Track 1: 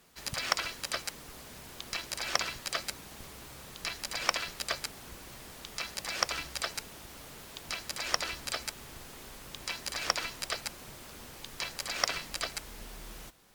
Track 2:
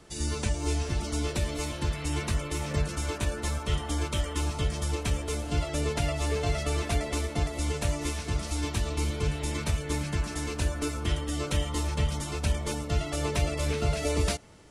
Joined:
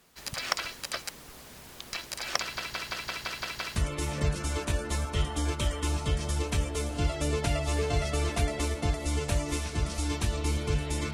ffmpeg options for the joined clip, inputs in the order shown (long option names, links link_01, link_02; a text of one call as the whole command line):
ffmpeg -i cue0.wav -i cue1.wav -filter_complex "[0:a]apad=whole_dur=11.13,atrim=end=11.13,asplit=8[link_01][link_02][link_03][link_04][link_05][link_06][link_07][link_08];[link_01]atrim=end=2.572[link_09];[link_02]atrim=start=2.398:end=2.572[link_10];[link_03]atrim=start=2.398:end=2.572[link_11];[link_04]atrim=start=2.398:end=2.572[link_12];[link_05]atrim=start=2.398:end=2.572[link_13];[link_06]atrim=start=2.398:end=2.572[link_14];[link_07]atrim=start=2.398:end=2.572[link_15];[link_08]atrim=start=2.398:end=2.572[link_16];[1:a]atrim=start=2.288:end=9.66[link_17];[link_09][link_10]acrossfade=duration=0.004:curve1=hsin:curve2=hsin[link_18];[link_18][link_11]acrossfade=duration=0.004:curve1=hsin:curve2=hsin[link_19];[link_19][link_12]acrossfade=duration=0.004:curve1=hsin:curve2=hsin[link_20];[link_20][link_13]acrossfade=duration=0.004:curve1=hsin:curve2=hsin[link_21];[link_21][link_14]acrossfade=duration=0.004:curve1=hsin:curve2=hsin[link_22];[link_22][link_15]acrossfade=duration=0.004:curve1=hsin:curve2=hsin[link_23];[link_23][link_16]acrossfade=duration=0.004:curve1=hsin:curve2=hsin[link_24];[link_24][link_17]acrossfade=duration=0.004:curve1=hsin:curve2=hsin" out.wav